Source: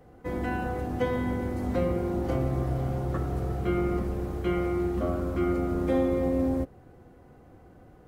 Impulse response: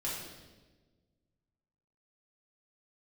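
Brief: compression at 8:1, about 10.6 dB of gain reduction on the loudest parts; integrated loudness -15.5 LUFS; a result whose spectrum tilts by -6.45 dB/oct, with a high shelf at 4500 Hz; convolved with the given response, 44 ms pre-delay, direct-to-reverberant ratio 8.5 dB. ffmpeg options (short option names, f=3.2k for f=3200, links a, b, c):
-filter_complex "[0:a]highshelf=f=4.5k:g=-7.5,acompressor=threshold=-33dB:ratio=8,asplit=2[a][b];[1:a]atrim=start_sample=2205,adelay=44[c];[b][c]afir=irnorm=-1:irlink=0,volume=-11.5dB[d];[a][d]amix=inputs=2:normalize=0,volume=22dB"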